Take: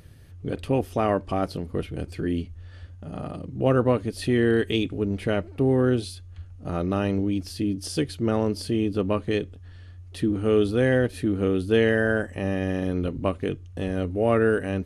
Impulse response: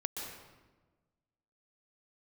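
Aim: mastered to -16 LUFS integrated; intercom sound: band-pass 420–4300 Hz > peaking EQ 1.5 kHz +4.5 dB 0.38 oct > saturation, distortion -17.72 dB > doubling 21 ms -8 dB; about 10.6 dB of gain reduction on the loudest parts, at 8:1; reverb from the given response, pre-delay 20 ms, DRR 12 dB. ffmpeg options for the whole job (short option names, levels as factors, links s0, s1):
-filter_complex "[0:a]acompressor=threshold=0.0447:ratio=8,asplit=2[s0][s1];[1:a]atrim=start_sample=2205,adelay=20[s2];[s1][s2]afir=irnorm=-1:irlink=0,volume=0.211[s3];[s0][s3]amix=inputs=2:normalize=0,highpass=420,lowpass=4300,equalizer=f=1500:t=o:w=0.38:g=4.5,asoftclip=threshold=0.0501,asplit=2[s4][s5];[s5]adelay=21,volume=0.398[s6];[s4][s6]amix=inputs=2:normalize=0,volume=12.6"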